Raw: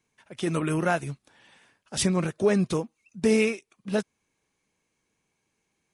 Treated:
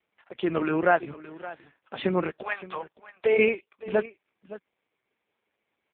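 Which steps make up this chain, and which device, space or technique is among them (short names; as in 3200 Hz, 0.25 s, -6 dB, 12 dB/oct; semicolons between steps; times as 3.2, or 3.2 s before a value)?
2.41–3.37 HPF 910 Hz -> 390 Hz 24 dB/oct; satellite phone (BPF 320–3400 Hz; echo 0.568 s -17 dB; gain +5.5 dB; AMR-NB 4.75 kbps 8000 Hz)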